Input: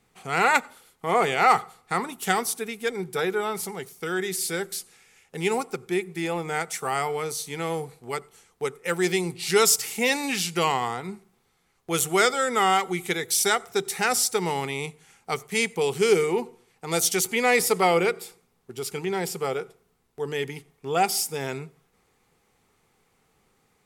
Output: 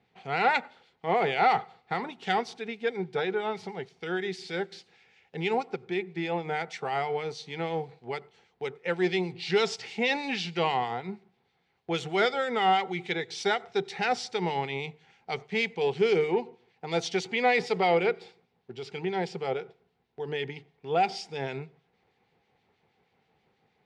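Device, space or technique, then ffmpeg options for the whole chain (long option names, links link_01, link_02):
guitar amplifier with harmonic tremolo: -filter_complex "[0:a]acrossover=split=2000[link_01][link_02];[link_01]aeval=exprs='val(0)*(1-0.5/2+0.5/2*cos(2*PI*6.3*n/s))':channel_layout=same[link_03];[link_02]aeval=exprs='val(0)*(1-0.5/2-0.5/2*cos(2*PI*6.3*n/s))':channel_layout=same[link_04];[link_03][link_04]amix=inputs=2:normalize=0,asoftclip=type=tanh:threshold=-13dB,highpass=84,equalizer=frequency=280:width_type=q:width=4:gain=-3,equalizer=frequency=770:width_type=q:width=4:gain=4,equalizer=frequency=1200:width_type=q:width=4:gain=-9,lowpass=frequency=4300:width=0.5412,lowpass=frequency=4300:width=1.3066"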